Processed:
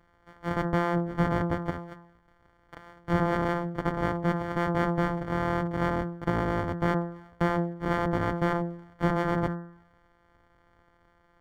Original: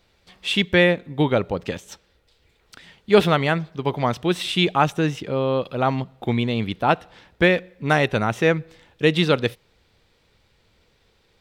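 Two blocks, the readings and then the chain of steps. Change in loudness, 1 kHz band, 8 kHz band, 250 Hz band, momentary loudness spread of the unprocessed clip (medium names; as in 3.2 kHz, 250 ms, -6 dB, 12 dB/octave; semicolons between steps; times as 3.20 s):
-7.5 dB, -5.0 dB, under -10 dB, -5.0 dB, 9 LU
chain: sorted samples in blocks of 256 samples; Savitzky-Golay filter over 41 samples; de-hum 171.4 Hz, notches 11; peak limiter -13 dBFS, peak gain reduction 9 dB; tape noise reduction on one side only encoder only; trim -1.5 dB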